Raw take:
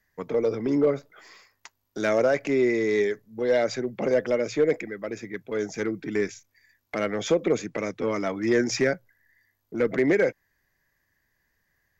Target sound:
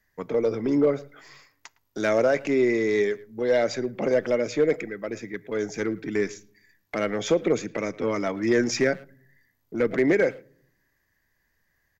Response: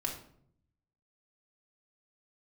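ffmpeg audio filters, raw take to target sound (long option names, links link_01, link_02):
-filter_complex "[0:a]asplit=2[link_01][link_02];[link_02]adelay=110,highpass=300,lowpass=3400,asoftclip=type=hard:threshold=-21.5dB,volume=-20dB[link_03];[link_01][link_03]amix=inputs=2:normalize=0,asplit=2[link_04][link_05];[1:a]atrim=start_sample=2205,lowshelf=frequency=160:gain=11[link_06];[link_05][link_06]afir=irnorm=-1:irlink=0,volume=-23dB[link_07];[link_04][link_07]amix=inputs=2:normalize=0"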